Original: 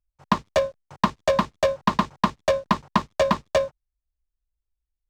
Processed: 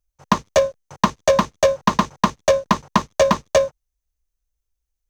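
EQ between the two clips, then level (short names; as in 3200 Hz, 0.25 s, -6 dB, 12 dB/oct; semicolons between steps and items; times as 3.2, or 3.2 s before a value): bell 490 Hz +4 dB 0.37 oct; bell 6200 Hz +9.5 dB 0.23 oct; high shelf 8200 Hz +5 dB; +3.5 dB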